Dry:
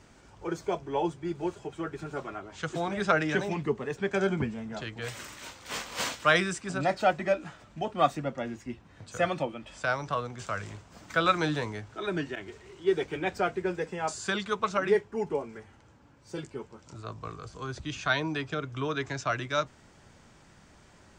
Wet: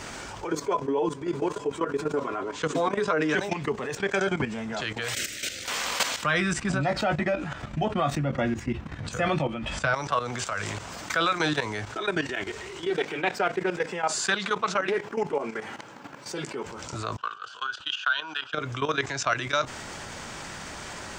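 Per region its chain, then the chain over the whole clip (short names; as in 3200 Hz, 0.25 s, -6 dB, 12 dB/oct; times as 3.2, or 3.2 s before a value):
0.52–3.34 flange 1.9 Hz, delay 6.3 ms, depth 1.8 ms, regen +52% + small resonant body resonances 270/440/1000 Hz, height 14 dB, ringing for 35 ms
5.14–5.65 short-mantissa float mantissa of 6-bit + Butterworth band-stop 970 Hz, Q 0.81
6.23–9.94 tone controls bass +13 dB, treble -7 dB + doubler 14 ms -8 dB
12.9–16.66 HPF 140 Hz 24 dB/oct + bell 7900 Hz -4.5 dB 1.5 oct + Doppler distortion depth 0.15 ms
17.17–18.54 gate -42 dBFS, range -10 dB + double band-pass 2100 Hz, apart 1 oct + transient shaper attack +12 dB, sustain +3 dB
whole clip: level quantiser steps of 15 dB; low shelf 410 Hz -10 dB; fast leveller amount 50%; gain +8 dB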